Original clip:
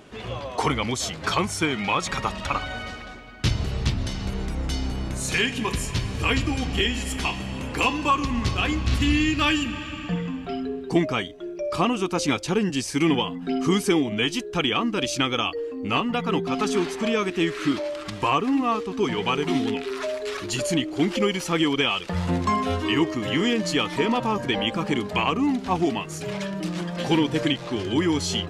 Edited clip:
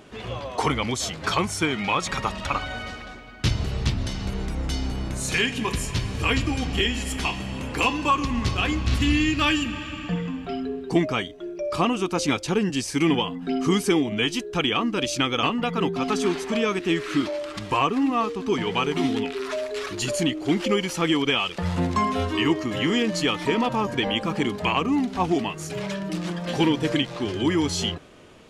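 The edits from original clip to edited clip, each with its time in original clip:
15.43–15.94 cut

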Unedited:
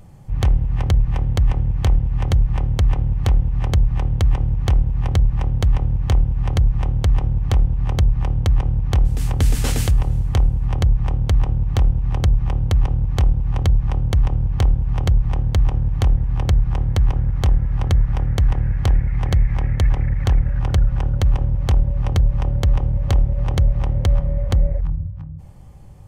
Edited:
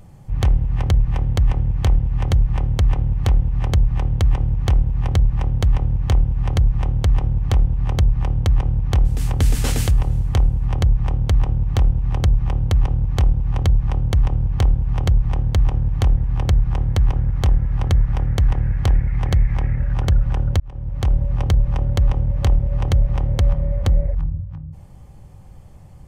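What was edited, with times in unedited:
19.79–20.45 cut
21.26–21.85 fade in

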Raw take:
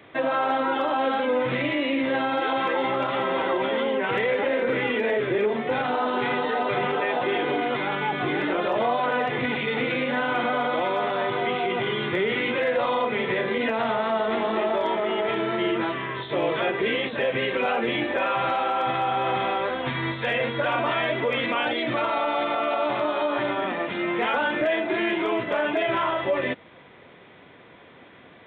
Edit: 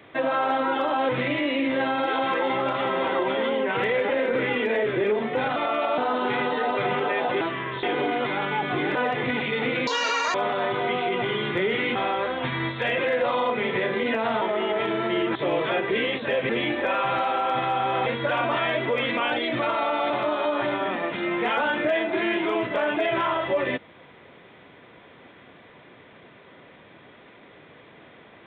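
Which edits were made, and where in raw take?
1.09–1.43 cut
8.45–9.1 cut
10.02–10.92 speed 190%
13.96–14.9 cut
15.84–16.26 move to 7.33
17.4–17.81 cut
19.38–20.41 move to 12.53
22.45–22.87 move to 5.9

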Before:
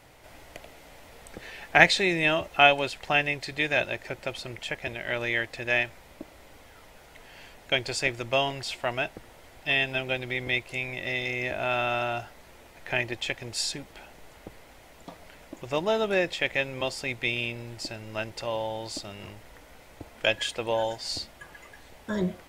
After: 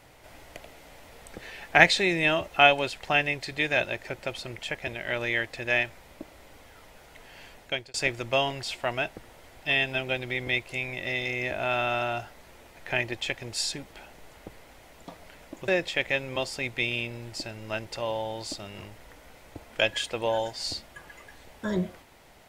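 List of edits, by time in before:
7.58–7.94 fade out
15.68–16.13 cut

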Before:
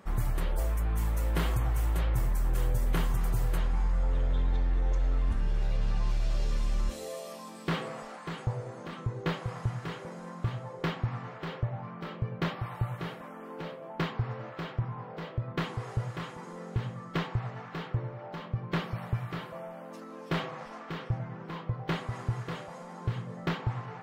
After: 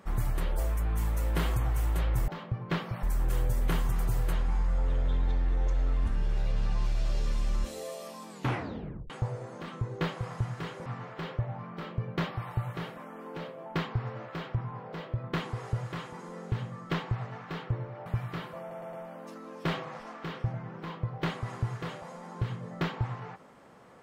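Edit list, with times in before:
7.54 tape stop 0.81 s
10.11–11.1 cut
18.3–19.05 move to 2.28
19.59 stutter 0.11 s, 4 plays

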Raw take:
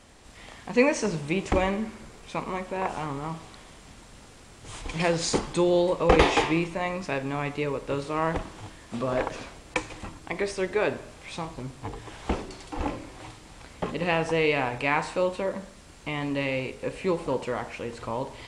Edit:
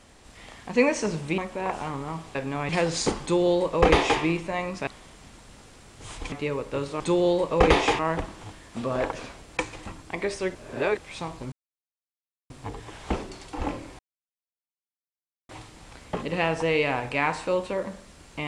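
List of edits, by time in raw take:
1.38–2.54 cut
3.51–4.96 swap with 7.14–7.48
5.49–6.48 copy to 8.16
10.72–11.15 reverse
11.69 insert silence 0.98 s
13.18 insert silence 1.50 s

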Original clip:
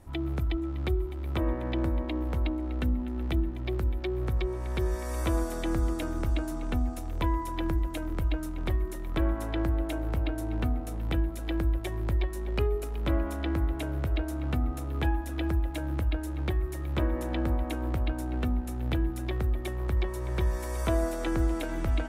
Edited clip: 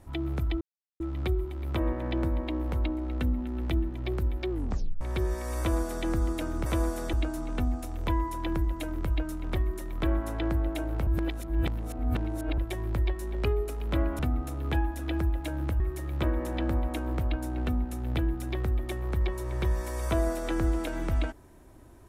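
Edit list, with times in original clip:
0.61 insert silence 0.39 s
4.11 tape stop 0.51 s
5.2–5.67 copy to 6.27
10.21–11.72 reverse
13.33–14.49 cut
16.1–16.56 cut

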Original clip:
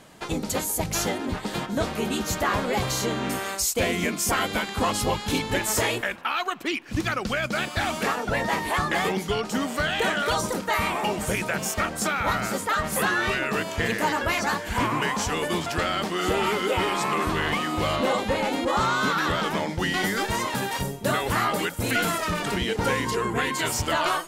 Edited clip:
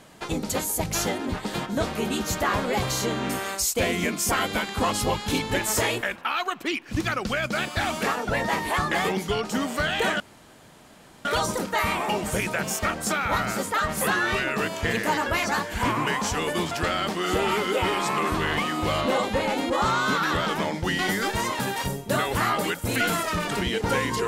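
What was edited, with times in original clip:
10.2 insert room tone 1.05 s

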